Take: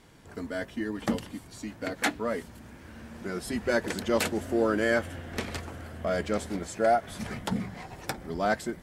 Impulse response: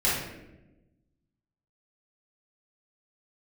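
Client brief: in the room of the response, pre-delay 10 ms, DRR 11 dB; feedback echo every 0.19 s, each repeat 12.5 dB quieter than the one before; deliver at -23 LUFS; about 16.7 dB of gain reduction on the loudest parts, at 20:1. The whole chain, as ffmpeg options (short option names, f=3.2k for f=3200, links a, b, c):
-filter_complex "[0:a]acompressor=threshold=-36dB:ratio=20,aecho=1:1:190|380|570:0.237|0.0569|0.0137,asplit=2[a][b];[1:a]atrim=start_sample=2205,adelay=10[c];[b][c]afir=irnorm=-1:irlink=0,volume=-24dB[d];[a][d]amix=inputs=2:normalize=0,volume=18dB"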